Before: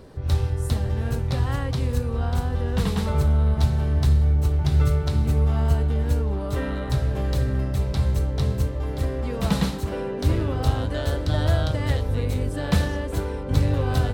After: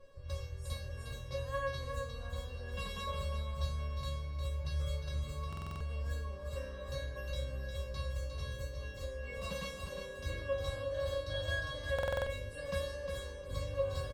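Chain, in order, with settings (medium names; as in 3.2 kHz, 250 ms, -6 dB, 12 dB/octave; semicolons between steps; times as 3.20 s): treble shelf 8.5 kHz -9.5 dB; feedback comb 550 Hz, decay 0.43 s, mix 100%; feedback delay 356 ms, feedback 26%, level -6.5 dB; buffer glitch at 5.48/11.94 s, samples 2048, times 6; trim +10 dB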